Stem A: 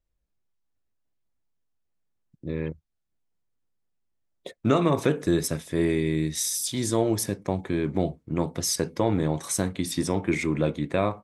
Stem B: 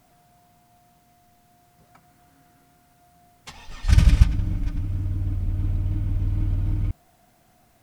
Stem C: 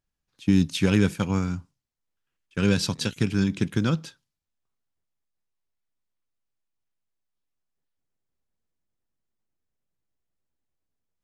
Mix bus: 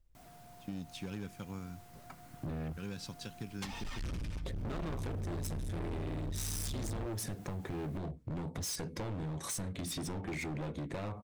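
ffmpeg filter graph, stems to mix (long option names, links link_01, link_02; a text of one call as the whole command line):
ffmpeg -i stem1.wav -i stem2.wav -i stem3.wav -filter_complex "[0:a]lowshelf=frequency=150:gain=11.5,acompressor=threshold=-25dB:ratio=6,volume=1.5dB[link_01];[1:a]acompressor=threshold=-24dB:ratio=12,adelay=150,volume=2.5dB[link_02];[2:a]adelay=200,volume=-17.5dB[link_03];[link_01][link_02][link_03]amix=inputs=3:normalize=0,volume=31dB,asoftclip=hard,volume=-31dB,acompressor=threshold=-37dB:ratio=6" out.wav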